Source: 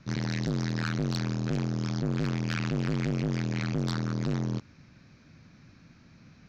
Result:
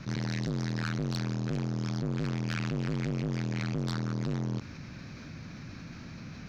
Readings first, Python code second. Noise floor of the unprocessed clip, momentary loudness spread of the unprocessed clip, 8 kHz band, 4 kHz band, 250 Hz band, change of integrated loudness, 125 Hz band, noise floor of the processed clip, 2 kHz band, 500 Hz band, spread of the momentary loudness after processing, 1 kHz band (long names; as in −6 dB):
−57 dBFS, 1 LU, can't be measured, −2.5 dB, −2.5 dB, −2.5 dB, −2.0 dB, −45 dBFS, −2.5 dB, −2.5 dB, 12 LU, −2.0 dB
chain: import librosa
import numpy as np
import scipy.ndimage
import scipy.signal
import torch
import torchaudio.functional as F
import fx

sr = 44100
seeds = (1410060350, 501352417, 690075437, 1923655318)

p1 = np.clip(10.0 ** (29.5 / 20.0) * x, -1.0, 1.0) / 10.0 ** (29.5 / 20.0)
p2 = x + (p1 * 10.0 ** (-9.0 / 20.0))
p3 = fx.env_flatten(p2, sr, amount_pct=50)
y = p3 * 10.0 ** (-5.0 / 20.0)